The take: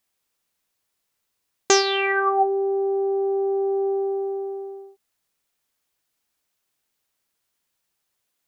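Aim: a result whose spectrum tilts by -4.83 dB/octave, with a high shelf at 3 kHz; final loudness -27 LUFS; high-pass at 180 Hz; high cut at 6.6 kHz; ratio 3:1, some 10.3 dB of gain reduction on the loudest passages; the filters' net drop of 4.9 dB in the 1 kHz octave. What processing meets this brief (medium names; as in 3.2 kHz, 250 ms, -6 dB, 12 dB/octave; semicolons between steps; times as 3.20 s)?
high-pass 180 Hz; low-pass 6.6 kHz; peaking EQ 1 kHz -8 dB; treble shelf 3 kHz +8 dB; compression 3:1, threshold -24 dBFS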